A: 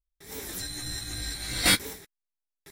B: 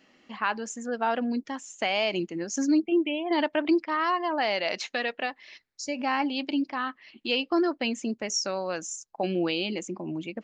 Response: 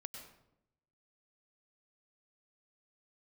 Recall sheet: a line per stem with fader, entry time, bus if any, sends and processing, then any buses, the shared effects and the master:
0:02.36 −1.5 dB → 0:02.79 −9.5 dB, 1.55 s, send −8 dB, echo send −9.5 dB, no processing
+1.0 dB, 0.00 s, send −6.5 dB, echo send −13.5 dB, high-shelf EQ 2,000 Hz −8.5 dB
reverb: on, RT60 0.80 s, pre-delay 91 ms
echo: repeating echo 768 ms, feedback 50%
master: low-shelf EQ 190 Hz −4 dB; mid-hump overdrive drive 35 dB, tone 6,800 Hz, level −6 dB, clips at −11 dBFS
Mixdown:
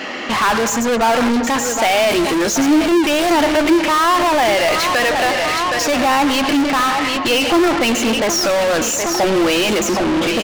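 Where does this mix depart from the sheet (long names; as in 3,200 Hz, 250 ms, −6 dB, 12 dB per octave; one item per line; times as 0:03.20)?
stem A −1.5 dB → −11.0 dB
stem B +1.0 dB → +11.5 dB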